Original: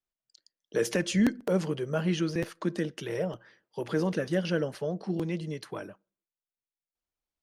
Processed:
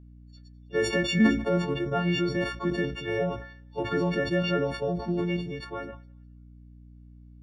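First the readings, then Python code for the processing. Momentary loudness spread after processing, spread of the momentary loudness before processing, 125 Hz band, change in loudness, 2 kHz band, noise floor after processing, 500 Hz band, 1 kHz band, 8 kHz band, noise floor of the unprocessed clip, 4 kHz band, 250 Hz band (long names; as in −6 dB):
13 LU, 13 LU, +2.5 dB, +3.0 dB, +6.0 dB, −50 dBFS, +2.5 dB, +7.0 dB, can't be measured, below −85 dBFS, +5.0 dB, +2.5 dB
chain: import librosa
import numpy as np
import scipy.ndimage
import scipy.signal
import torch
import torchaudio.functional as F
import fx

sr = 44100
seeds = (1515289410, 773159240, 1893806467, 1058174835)

p1 = fx.freq_snap(x, sr, grid_st=4)
p2 = scipy.signal.sosfilt(scipy.signal.butter(2, 2400.0, 'lowpass', fs=sr, output='sos'), p1)
p3 = fx.level_steps(p2, sr, step_db=11)
p4 = p2 + (p3 * librosa.db_to_amplitude(1.5))
p5 = fx.echo_thinned(p4, sr, ms=206, feedback_pct=26, hz=1100.0, wet_db=-24)
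p6 = fx.add_hum(p5, sr, base_hz=60, snr_db=20)
p7 = fx.sustainer(p6, sr, db_per_s=89.0)
y = p7 * librosa.db_to_amplitude(-2.5)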